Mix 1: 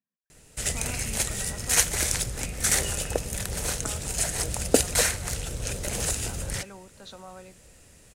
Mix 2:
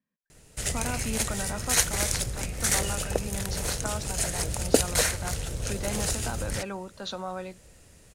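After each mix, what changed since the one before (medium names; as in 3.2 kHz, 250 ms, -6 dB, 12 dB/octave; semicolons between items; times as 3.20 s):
speech +9.5 dB; reverb: off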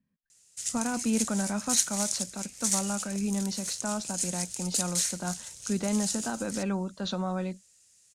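background: add band-pass filter 6.8 kHz, Q 1.6; master: add tone controls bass +14 dB, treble +1 dB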